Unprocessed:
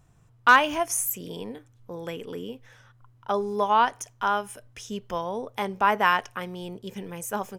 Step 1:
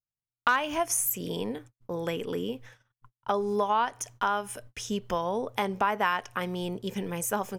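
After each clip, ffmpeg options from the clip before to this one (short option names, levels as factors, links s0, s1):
-af "agate=range=0.00447:threshold=0.00316:ratio=16:detection=peak,acompressor=threshold=0.0355:ratio=3,volume=1.58"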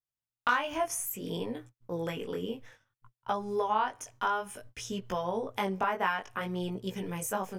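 -af "flanger=delay=16:depth=6:speed=0.59,adynamicequalizer=threshold=0.00447:dfrequency=3100:dqfactor=0.7:tfrequency=3100:tqfactor=0.7:attack=5:release=100:ratio=0.375:range=3:mode=cutabove:tftype=highshelf"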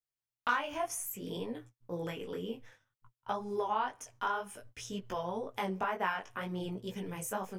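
-af "flanger=delay=3.9:depth=7.9:regen=-44:speed=2:shape=triangular"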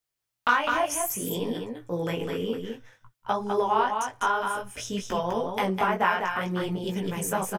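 -af "aecho=1:1:203:0.562,volume=2.66"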